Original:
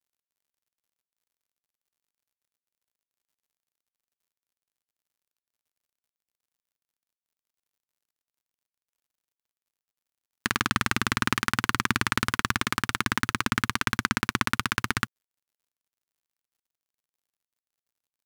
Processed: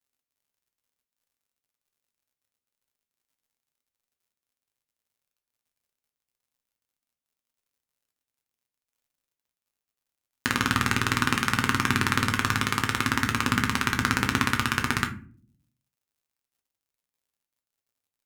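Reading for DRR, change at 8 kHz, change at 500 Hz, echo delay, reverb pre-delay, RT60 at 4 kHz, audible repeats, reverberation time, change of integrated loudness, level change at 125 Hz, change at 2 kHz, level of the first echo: 3.0 dB, +1.5 dB, +2.5 dB, no echo audible, 7 ms, 0.25 s, no echo audible, 0.45 s, +2.0 dB, +4.5 dB, +1.5 dB, no echo audible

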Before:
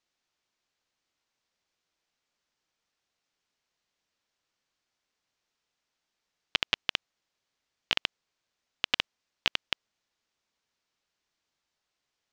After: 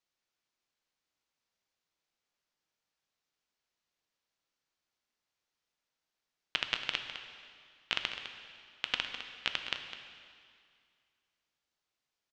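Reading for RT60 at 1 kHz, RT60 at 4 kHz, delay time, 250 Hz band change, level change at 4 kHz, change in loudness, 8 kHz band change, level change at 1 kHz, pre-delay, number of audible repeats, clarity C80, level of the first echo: 2.2 s, 2.1 s, 206 ms, −5.0 dB, −4.5 dB, −4.5 dB, −5.0 dB, −3.0 dB, 4 ms, 1, 6.5 dB, −11.0 dB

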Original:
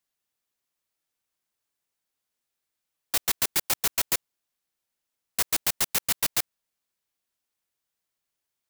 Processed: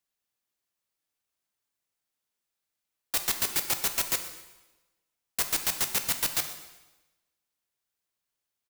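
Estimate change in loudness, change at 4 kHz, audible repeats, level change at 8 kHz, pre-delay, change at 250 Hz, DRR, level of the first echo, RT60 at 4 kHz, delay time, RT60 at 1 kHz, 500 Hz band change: −2.0 dB, −1.5 dB, 2, −2.0 dB, 4 ms, −2.0 dB, 6.5 dB, −18.5 dB, 1.0 s, 124 ms, 1.1 s, −2.0 dB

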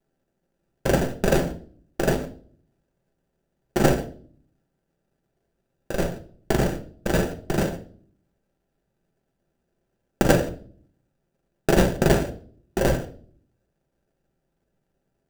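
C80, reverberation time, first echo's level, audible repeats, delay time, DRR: 18.5 dB, 0.45 s, no echo audible, no echo audible, no echo audible, 3.5 dB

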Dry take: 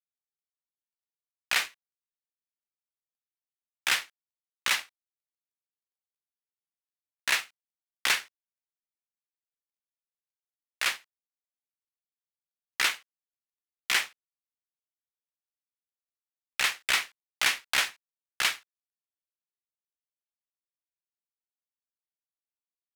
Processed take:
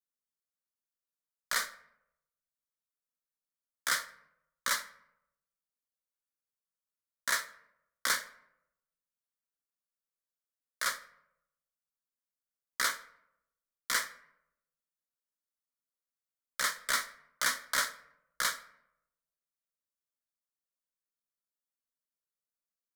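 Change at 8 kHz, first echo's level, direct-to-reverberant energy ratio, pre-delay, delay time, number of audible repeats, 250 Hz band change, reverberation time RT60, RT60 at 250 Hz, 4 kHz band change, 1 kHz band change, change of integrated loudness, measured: −1.0 dB, no echo audible, 9.0 dB, 7 ms, no echo audible, no echo audible, −2.5 dB, 0.80 s, 0.90 s, −7.0 dB, −0.5 dB, −5.0 dB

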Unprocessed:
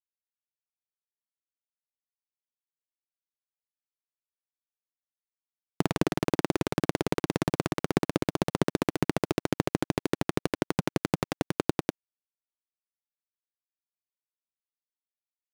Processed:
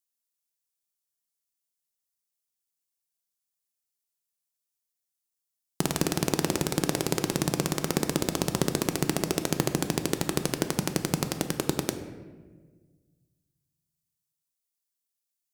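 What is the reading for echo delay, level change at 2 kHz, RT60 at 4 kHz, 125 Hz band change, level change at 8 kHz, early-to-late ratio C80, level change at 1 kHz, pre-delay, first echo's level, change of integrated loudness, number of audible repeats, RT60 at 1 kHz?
no echo audible, +0.5 dB, 0.85 s, +1.5 dB, +11.5 dB, 10.5 dB, −0.5 dB, 5 ms, no echo audible, +1.5 dB, no echo audible, 1.2 s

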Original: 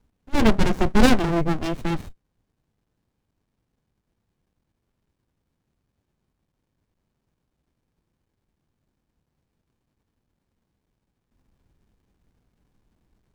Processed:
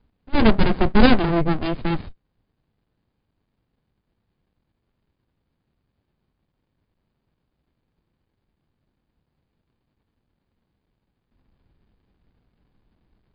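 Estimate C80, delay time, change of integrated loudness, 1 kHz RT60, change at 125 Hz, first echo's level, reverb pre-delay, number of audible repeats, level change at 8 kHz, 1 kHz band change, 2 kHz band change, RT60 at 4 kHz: no reverb audible, no echo audible, +2.0 dB, no reverb audible, +2.0 dB, no echo audible, no reverb audible, no echo audible, below −35 dB, +2.0 dB, +2.0 dB, no reverb audible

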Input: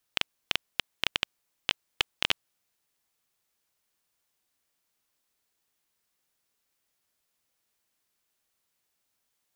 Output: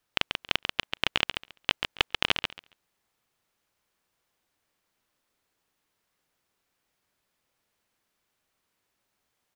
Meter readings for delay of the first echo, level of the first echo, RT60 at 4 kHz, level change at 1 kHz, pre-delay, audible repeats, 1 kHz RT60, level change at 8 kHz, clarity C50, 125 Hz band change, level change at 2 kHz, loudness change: 138 ms, −6.0 dB, no reverb audible, +5.5 dB, no reverb audible, 2, no reverb audible, −1.5 dB, no reverb audible, +6.5 dB, +3.5 dB, +2.5 dB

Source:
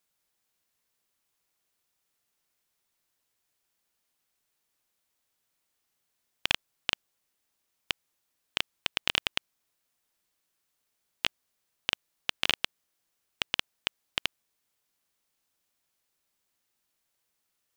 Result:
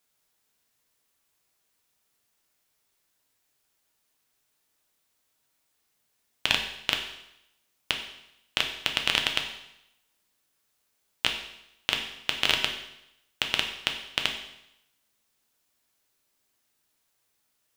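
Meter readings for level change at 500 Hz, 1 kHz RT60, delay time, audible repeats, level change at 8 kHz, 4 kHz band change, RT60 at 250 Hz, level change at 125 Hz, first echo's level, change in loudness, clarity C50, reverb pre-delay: +5.0 dB, 0.80 s, no echo audible, no echo audible, +5.0 dB, +4.5 dB, 0.85 s, +5.0 dB, no echo audible, +4.5 dB, 7.5 dB, 5 ms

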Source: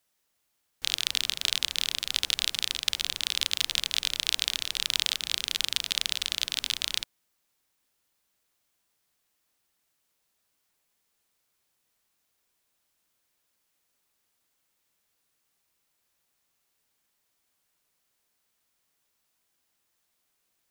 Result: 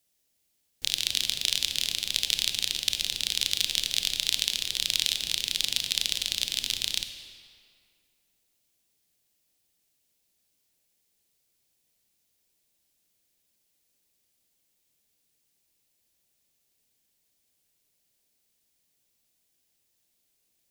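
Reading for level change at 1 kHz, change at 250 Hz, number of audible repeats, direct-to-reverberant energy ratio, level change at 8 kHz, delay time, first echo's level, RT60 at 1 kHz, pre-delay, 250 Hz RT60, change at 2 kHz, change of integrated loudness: −7.5 dB, +2.5 dB, no echo audible, 7.0 dB, +2.5 dB, no echo audible, no echo audible, 2.3 s, 22 ms, 2.2 s, −1.5 dB, +1.0 dB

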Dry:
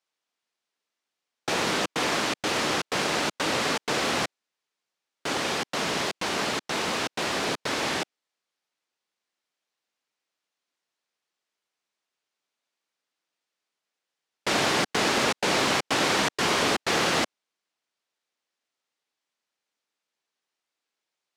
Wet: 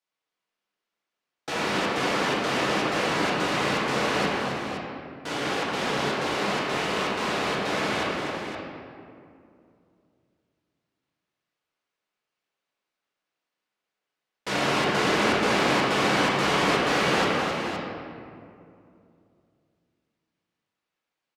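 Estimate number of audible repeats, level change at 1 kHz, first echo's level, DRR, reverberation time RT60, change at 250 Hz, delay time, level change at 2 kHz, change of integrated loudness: 2, +2.5 dB, −7.0 dB, −8.5 dB, 2.5 s, +3.5 dB, 265 ms, +1.5 dB, +0.5 dB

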